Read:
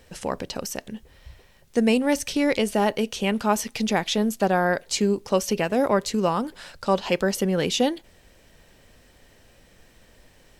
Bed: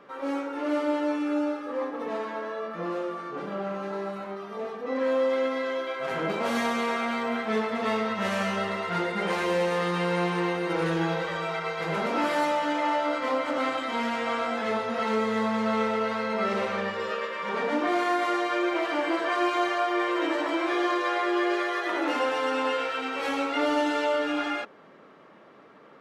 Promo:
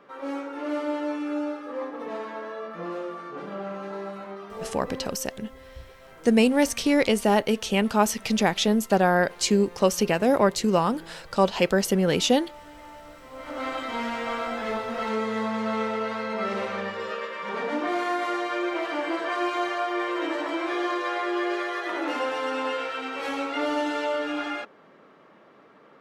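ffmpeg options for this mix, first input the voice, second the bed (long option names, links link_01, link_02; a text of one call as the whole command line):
ffmpeg -i stem1.wav -i stem2.wav -filter_complex "[0:a]adelay=4500,volume=1dB[link_01];[1:a]volume=16dB,afade=type=out:start_time=4.7:duration=0.46:silence=0.133352,afade=type=in:start_time=13.31:duration=0.46:silence=0.125893[link_02];[link_01][link_02]amix=inputs=2:normalize=0" out.wav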